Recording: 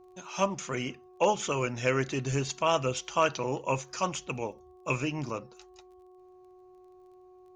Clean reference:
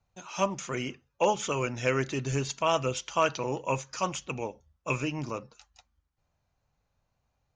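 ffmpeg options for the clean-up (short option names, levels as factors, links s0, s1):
-af "adeclick=t=4,bandreject=f=366.9:t=h:w=4,bandreject=f=733.8:t=h:w=4,bandreject=f=1100.7:t=h:w=4"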